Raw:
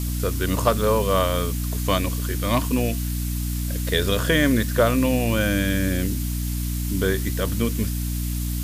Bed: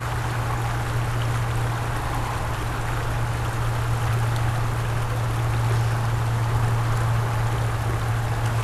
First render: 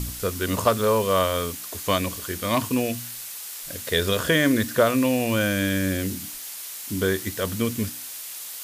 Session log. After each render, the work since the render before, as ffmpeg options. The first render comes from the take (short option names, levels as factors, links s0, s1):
-af "bandreject=f=60:t=h:w=4,bandreject=f=120:t=h:w=4,bandreject=f=180:t=h:w=4,bandreject=f=240:t=h:w=4,bandreject=f=300:t=h:w=4"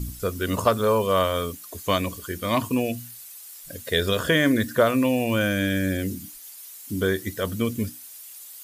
-af "afftdn=nr=12:nf=-37"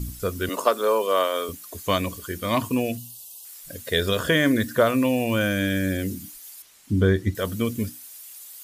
-filter_complex "[0:a]asettb=1/sr,asplit=3[s0][s1][s2];[s0]atrim=end=0.494[s3];[s1]atrim=start=0.49:end=1.49,asetpts=PTS-STARTPTS,afade=t=in:d=0.004:c=qsin,afade=t=out:st=0.996:d=0.004:c=qsin,highpass=f=290:w=0.5412,highpass=f=290:w=1.3066[s4];[s2]atrim=start=1.486[s5];[s3][s4]acrossfade=d=0.004:c1=hsin:c2=qsin[s6];[s6][s5]acrossfade=d=0.004:c1=qsin:c2=hsin,asettb=1/sr,asplit=3[s7][s8][s9];[s7]atrim=end=2.974[s10];[s8]atrim=start=2.97:end=3.45,asetpts=PTS-STARTPTS,afade=t=in:d=0.004:c=qsin,afade=t=out:st=0.476:d=0.004:c=qsin,asuperstop=centerf=1700:order=20:qfactor=1.1[s11];[s9]atrim=start=3.446[s12];[s10][s11]acrossfade=d=0.004:c1=hsin:c2=qsin[s13];[s13][s12]acrossfade=d=0.004:c1=qsin:c2=hsin,asettb=1/sr,asplit=3[s14][s15][s16];[s14]atrim=end=6.624[s17];[s15]atrim=start=6.62:end=7.35,asetpts=PTS-STARTPTS,afade=t=in:d=0.004:c=qsin,afade=t=out:st=0.726:d=0.004:c=qsin,aemphasis=mode=reproduction:type=bsi[s18];[s16]atrim=start=7.346[s19];[s17][s18]acrossfade=d=0.004:c1=hsin:c2=qsin[s20];[s20][s19]acrossfade=d=0.004:c1=qsin:c2=hsin"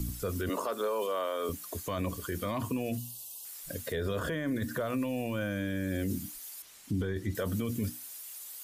-filter_complex "[0:a]acrossover=split=110|1700[s0][s1][s2];[s0]acompressor=threshold=0.0178:ratio=4[s3];[s1]acompressor=threshold=0.0631:ratio=4[s4];[s2]acompressor=threshold=0.00891:ratio=4[s5];[s3][s4][s5]amix=inputs=3:normalize=0,alimiter=limit=0.0631:level=0:latency=1:release=14"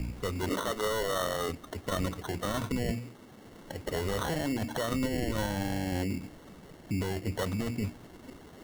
-af "lowpass=f=2700:t=q:w=10,acrusher=samples=18:mix=1:aa=0.000001"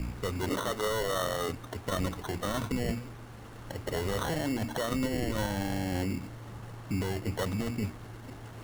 -filter_complex "[1:a]volume=0.0708[s0];[0:a][s0]amix=inputs=2:normalize=0"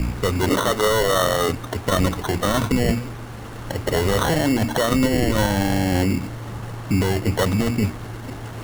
-af "volume=3.98"